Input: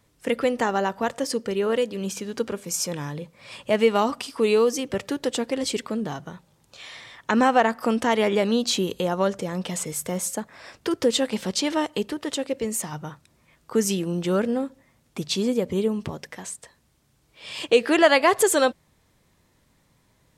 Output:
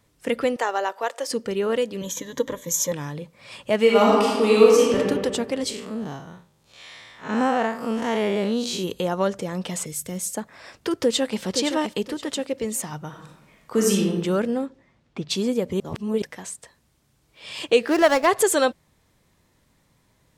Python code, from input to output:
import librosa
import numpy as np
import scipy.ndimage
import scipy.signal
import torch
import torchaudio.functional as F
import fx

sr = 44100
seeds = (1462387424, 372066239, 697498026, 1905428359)

y = fx.highpass(x, sr, hz=410.0, slope=24, at=(0.56, 1.31))
y = fx.ripple_eq(y, sr, per_octave=1.1, db=15, at=(2.01, 2.92))
y = fx.reverb_throw(y, sr, start_s=3.8, length_s=1.18, rt60_s=1.6, drr_db=-4.0)
y = fx.spec_blur(y, sr, span_ms=119.0, at=(5.69, 8.83), fade=0.02)
y = fx.peak_eq(y, sr, hz=900.0, db=-11.0, octaves=2.2, at=(9.86, 10.35))
y = fx.echo_throw(y, sr, start_s=10.99, length_s=0.42, ms=520, feedback_pct=30, wet_db=-7.5)
y = fx.reverb_throw(y, sr, start_s=13.08, length_s=1.0, rt60_s=0.94, drr_db=-1.5)
y = fx.lowpass(y, sr, hz=fx.line((14.65, 5800.0), (15.29, 3100.0)), slope=12, at=(14.65, 15.29), fade=0.02)
y = fx.median_filter(y, sr, points=15, at=(17.86, 18.26), fade=0.02)
y = fx.edit(y, sr, fx.reverse_span(start_s=15.8, length_s=0.42), tone=tone)